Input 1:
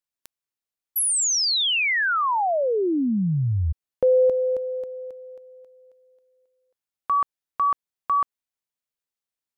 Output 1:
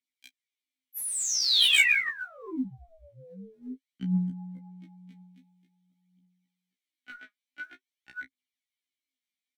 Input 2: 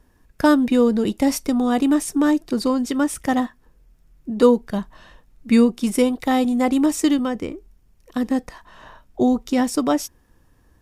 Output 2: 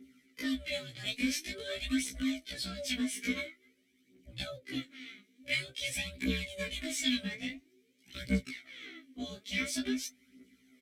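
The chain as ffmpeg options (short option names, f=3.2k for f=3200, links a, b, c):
-filter_complex "[0:a]highpass=67,bandreject=f=1.8k:w=24,acrossover=split=350|5500[a][b][c];[a]acompressor=threshold=-34dB:ratio=5:attack=44:release=51[d];[c]alimiter=level_in=1.5dB:limit=-24dB:level=0:latency=1:release=91,volume=-1.5dB[e];[d][b][e]amix=inputs=3:normalize=0,acrossover=split=350[f][g];[g]acompressor=threshold=-23dB:ratio=10:attack=0.13:release=583:knee=2.83:detection=peak[h];[f][h]amix=inputs=2:normalize=0,crystalizer=i=6.5:c=0,aeval=exprs='val(0)*sin(2*PI*330*n/s)':c=same,asplit=3[i][j][k];[i]bandpass=f=270:t=q:w=8,volume=0dB[l];[j]bandpass=f=2.29k:t=q:w=8,volume=-6dB[m];[k]bandpass=f=3.01k:t=q:w=8,volume=-9dB[n];[l][m][n]amix=inputs=3:normalize=0,aeval=exprs='0.0531*(abs(mod(val(0)/0.0531+3,4)-2)-1)':c=same,aphaser=in_gain=1:out_gain=1:delay=4.9:decay=0.75:speed=0.48:type=triangular,asplit=2[o][p];[p]adelay=16,volume=-10dB[q];[o][q]amix=inputs=2:normalize=0,afftfilt=real='re*1.73*eq(mod(b,3),0)':imag='im*1.73*eq(mod(b,3),0)':win_size=2048:overlap=0.75,volume=8.5dB"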